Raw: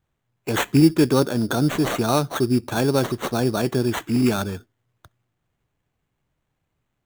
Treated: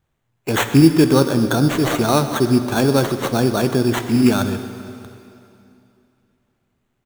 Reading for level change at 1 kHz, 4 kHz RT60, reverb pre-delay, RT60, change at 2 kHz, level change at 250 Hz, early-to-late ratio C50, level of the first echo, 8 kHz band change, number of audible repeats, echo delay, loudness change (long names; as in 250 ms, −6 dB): +4.0 dB, 2.6 s, 5 ms, 2.8 s, +4.0 dB, +4.5 dB, 9.0 dB, −17.0 dB, +4.0 dB, 1, 127 ms, +4.0 dB